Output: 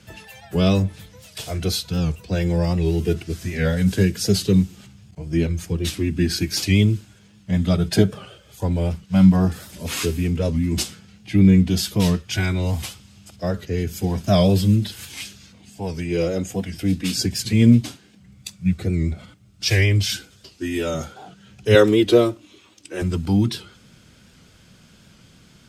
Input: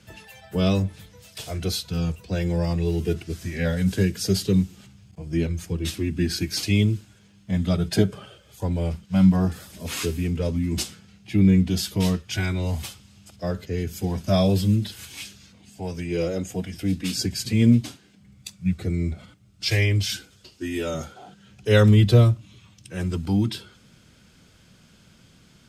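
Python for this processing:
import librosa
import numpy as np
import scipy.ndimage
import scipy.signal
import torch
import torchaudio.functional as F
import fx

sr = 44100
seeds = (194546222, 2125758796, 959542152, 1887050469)

y = fx.low_shelf_res(x, sr, hz=220.0, db=-13.0, q=3.0, at=(21.75, 23.02))
y = fx.record_warp(y, sr, rpm=78.0, depth_cents=100.0)
y = F.gain(torch.from_numpy(y), 3.5).numpy()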